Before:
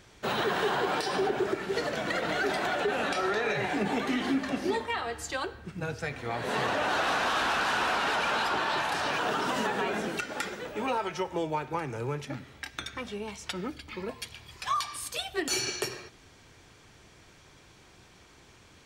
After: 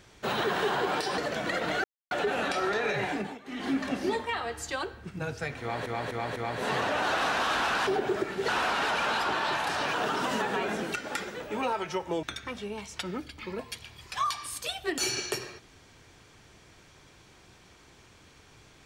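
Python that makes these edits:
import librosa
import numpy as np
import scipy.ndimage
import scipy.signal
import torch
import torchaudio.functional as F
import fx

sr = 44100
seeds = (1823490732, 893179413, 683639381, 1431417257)

y = fx.edit(x, sr, fx.move(start_s=1.18, length_s=0.61, to_s=7.73),
    fx.silence(start_s=2.45, length_s=0.27),
    fx.fade_down_up(start_s=3.68, length_s=0.69, db=-20.0, fade_s=0.32),
    fx.repeat(start_s=6.22, length_s=0.25, count=4),
    fx.cut(start_s=11.48, length_s=1.25), tone=tone)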